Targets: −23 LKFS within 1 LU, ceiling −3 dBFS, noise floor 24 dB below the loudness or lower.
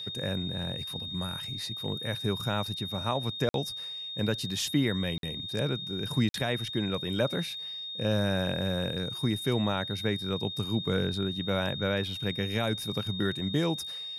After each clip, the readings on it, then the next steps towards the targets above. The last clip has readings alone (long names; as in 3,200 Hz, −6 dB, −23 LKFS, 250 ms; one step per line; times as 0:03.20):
number of dropouts 3; longest dropout 52 ms; interfering tone 3,700 Hz; level of the tone −36 dBFS; integrated loudness −30.5 LKFS; sample peak −15.0 dBFS; target loudness −23.0 LKFS
→ repair the gap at 0:03.49/0:05.18/0:06.29, 52 ms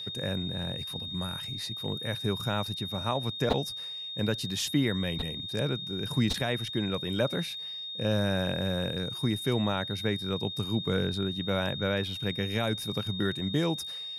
number of dropouts 0; interfering tone 3,700 Hz; level of the tone −36 dBFS
→ notch filter 3,700 Hz, Q 30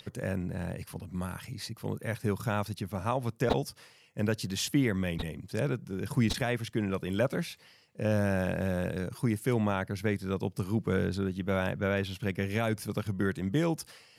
interfering tone none found; integrated loudness −32.0 LKFS; sample peak −13.0 dBFS; target loudness −23.0 LKFS
→ level +9 dB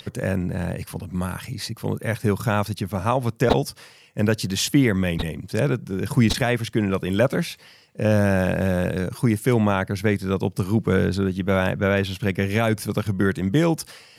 integrated loudness −23.0 LKFS; sample peak −4.0 dBFS; background noise floor −50 dBFS